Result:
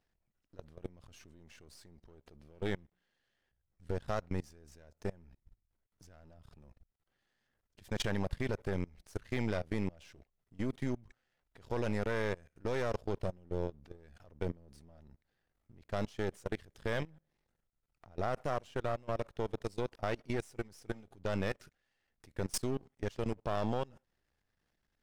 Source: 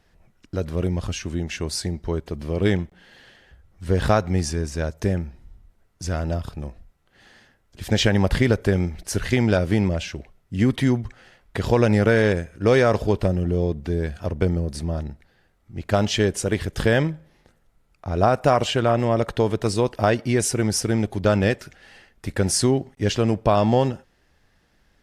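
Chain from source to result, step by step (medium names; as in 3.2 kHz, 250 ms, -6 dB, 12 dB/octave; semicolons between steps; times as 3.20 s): partial rectifier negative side -12 dB; level held to a coarse grid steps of 24 dB; trim -9 dB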